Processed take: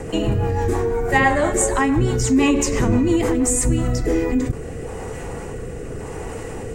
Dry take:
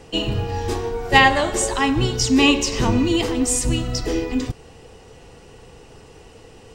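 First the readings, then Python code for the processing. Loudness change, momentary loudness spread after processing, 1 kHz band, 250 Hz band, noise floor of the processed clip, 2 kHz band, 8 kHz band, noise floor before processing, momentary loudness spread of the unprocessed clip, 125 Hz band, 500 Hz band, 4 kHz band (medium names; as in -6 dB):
0.0 dB, 15 LU, -1.5 dB, +1.5 dB, -31 dBFS, -3.0 dB, +1.0 dB, -46 dBFS, 11 LU, +3.0 dB, +3.0 dB, -10.5 dB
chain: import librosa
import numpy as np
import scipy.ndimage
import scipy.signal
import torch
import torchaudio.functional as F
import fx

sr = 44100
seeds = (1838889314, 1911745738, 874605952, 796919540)

y = fx.band_shelf(x, sr, hz=3900.0, db=-12.0, octaves=1.3)
y = fx.rotary_switch(y, sr, hz=6.0, then_hz=0.85, switch_at_s=3.45)
y = fx.env_flatten(y, sr, amount_pct=50)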